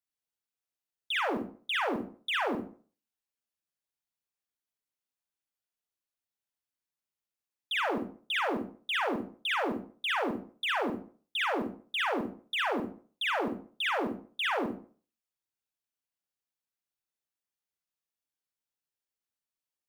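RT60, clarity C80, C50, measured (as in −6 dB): 0.45 s, 10.0 dB, 4.5 dB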